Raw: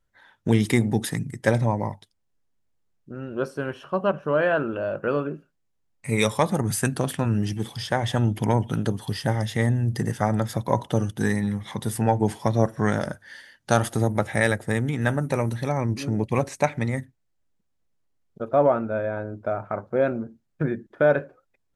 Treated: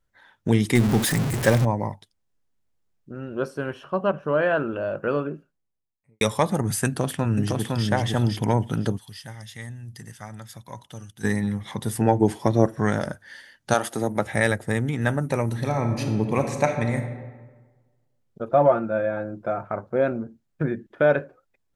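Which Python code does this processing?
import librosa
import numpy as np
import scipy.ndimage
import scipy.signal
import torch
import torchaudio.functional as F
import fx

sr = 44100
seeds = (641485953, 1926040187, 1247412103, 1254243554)

y = fx.zero_step(x, sr, step_db=-21.5, at=(0.75, 1.65))
y = fx.high_shelf(y, sr, hz=5300.0, db=-4.0, at=(3.8, 4.5))
y = fx.studio_fade_out(y, sr, start_s=5.18, length_s=1.03)
y = fx.echo_throw(y, sr, start_s=6.86, length_s=0.99, ms=510, feedback_pct=15, wet_db=-2.5)
y = fx.tone_stack(y, sr, knobs='5-5-5', at=(8.97, 11.23), fade=0.02)
y = fx.peak_eq(y, sr, hz=340.0, db=7.0, octaves=0.77, at=(12.0, 12.79))
y = fx.highpass(y, sr, hz=fx.line((13.73, 350.0), (14.25, 130.0)), slope=12, at=(13.73, 14.25), fade=0.02)
y = fx.reverb_throw(y, sr, start_s=15.44, length_s=1.53, rt60_s=1.4, drr_db=5.0)
y = fx.comb(y, sr, ms=5.8, depth=0.65, at=(18.49, 19.63))
y = fx.peak_eq(y, sr, hz=2800.0, db=5.0, octaves=0.77, at=(20.77, 21.17))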